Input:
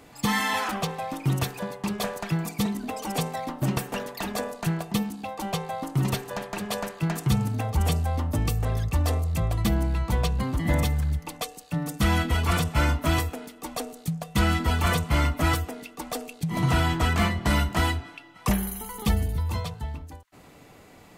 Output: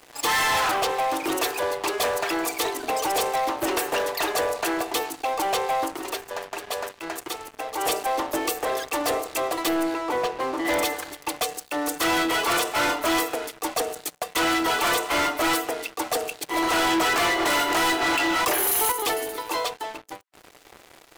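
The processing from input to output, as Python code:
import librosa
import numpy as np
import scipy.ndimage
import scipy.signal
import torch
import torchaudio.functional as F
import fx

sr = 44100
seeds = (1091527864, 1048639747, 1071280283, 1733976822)

y = fx.lowpass(x, sr, hz=1300.0, slope=6, at=(9.94, 10.65))
y = fx.env_flatten(y, sr, amount_pct=70, at=(16.72, 18.92))
y = fx.edit(y, sr, fx.fade_down_up(start_s=5.82, length_s=2.06, db=-9.5, fade_s=0.17), tone=tone)
y = scipy.signal.sosfilt(scipy.signal.ellip(4, 1.0, 40, 320.0, 'highpass', fs=sr, output='sos'), y)
y = fx.leveller(y, sr, passes=5)
y = y * librosa.db_to_amplitude(-6.5)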